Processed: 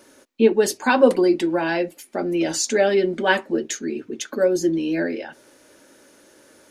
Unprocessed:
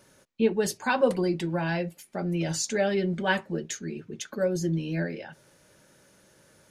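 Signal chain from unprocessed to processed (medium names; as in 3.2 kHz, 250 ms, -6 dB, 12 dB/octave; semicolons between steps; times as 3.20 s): resonant low shelf 210 Hz -8 dB, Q 3; trim +6.5 dB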